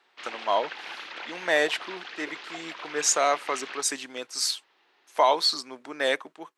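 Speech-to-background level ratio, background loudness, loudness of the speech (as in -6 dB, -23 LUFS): 12.5 dB, -39.0 LUFS, -26.5 LUFS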